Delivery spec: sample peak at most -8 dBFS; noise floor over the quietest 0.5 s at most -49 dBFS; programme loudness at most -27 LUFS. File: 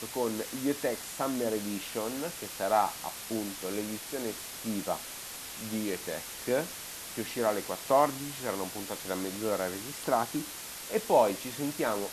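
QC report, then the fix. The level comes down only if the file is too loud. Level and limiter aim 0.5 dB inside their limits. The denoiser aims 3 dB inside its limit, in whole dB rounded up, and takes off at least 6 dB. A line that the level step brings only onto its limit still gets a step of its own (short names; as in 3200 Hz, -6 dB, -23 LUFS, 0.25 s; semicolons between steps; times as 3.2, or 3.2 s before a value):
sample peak -12.5 dBFS: OK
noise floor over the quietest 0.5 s -42 dBFS: fail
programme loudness -32.0 LUFS: OK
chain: denoiser 10 dB, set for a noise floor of -42 dBFS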